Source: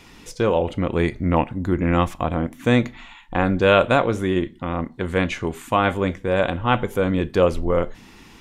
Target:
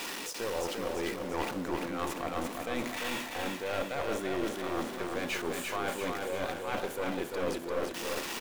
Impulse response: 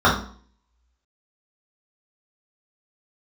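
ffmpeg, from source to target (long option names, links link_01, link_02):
-filter_complex "[0:a]aeval=exprs='val(0)+0.5*0.0355*sgn(val(0))':channel_layout=same,highpass=350,bandreject=frequency=2100:width=22,areverse,acompressor=threshold=-27dB:ratio=6,areverse,aeval=exprs='clip(val(0),-1,0.0266)':channel_layout=same,asplit=2[link_01][link_02];[link_02]aecho=0:1:344|688|1032|1376|1720|2064|2408:0.631|0.341|0.184|0.0994|0.0537|0.029|0.0156[link_03];[link_01][link_03]amix=inputs=2:normalize=0,volume=-2.5dB"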